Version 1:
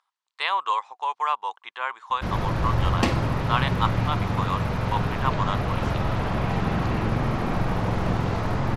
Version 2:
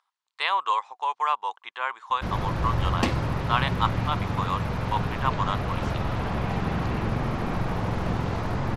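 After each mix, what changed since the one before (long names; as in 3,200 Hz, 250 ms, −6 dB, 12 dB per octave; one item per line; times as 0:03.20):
background: send −9.0 dB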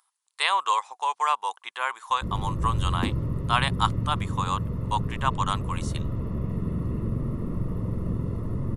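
background: add moving average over 56 samples
master: remove high-frequency loss of the air 150 metres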